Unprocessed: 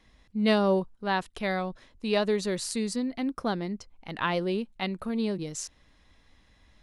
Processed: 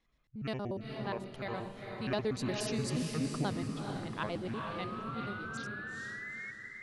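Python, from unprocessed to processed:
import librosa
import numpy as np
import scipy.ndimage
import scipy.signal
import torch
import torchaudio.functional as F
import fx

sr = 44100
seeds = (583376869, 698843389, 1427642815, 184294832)

p1 = fx.pitch_trill(x, sr, semitones=-8.5, every_ms=60)
p2 = fx.doppler_pass(p1, sr, speed_mps=6, closest_m=5.9, pass_at_s=3.03)
p3 = fx.spec_paint(p2, sr, seeds[0], shape='rise', start_s=4.54, length_s=1.97, low_hz=1100.0, high_hz=2200.0, level_db=-40.0)
p4 = p3 + fx.echo_diffused(p3, sr, ms=450, feedback_pct=42, wet_db=-3.5, dry=0)
y = p4 * 10.0 ** (-5.0 / 20.0)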